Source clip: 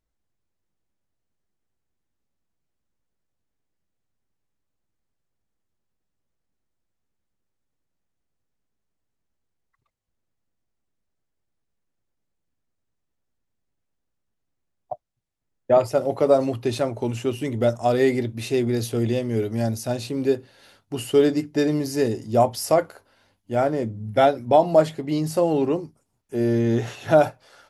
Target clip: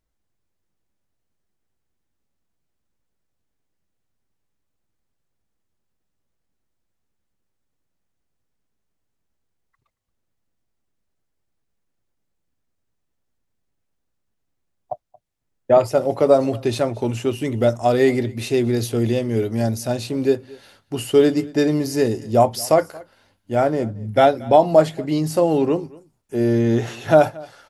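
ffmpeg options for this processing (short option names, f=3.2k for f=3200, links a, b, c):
-af "aecho=1:1:227:0.0708,volume=3dB"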